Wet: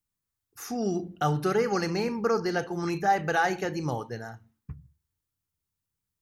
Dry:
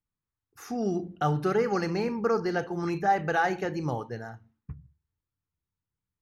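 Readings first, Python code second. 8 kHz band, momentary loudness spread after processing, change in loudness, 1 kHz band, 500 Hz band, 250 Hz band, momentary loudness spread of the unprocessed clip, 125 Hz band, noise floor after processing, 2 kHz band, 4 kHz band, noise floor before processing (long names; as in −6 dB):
+7.0 dB, 17 LU, +0.5 dB, +0.5 dB, 0.0 dB, 0.0 dB, 18 LU, 0.0 dB, below −85 dBFS, +1.5 dB, +4.5 dB, below −85 dBFS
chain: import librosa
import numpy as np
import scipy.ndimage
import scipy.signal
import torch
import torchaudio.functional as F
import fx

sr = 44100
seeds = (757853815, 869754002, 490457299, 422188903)

y = fx.high_shelf(x, sr, hz=4300.0, db=10.0)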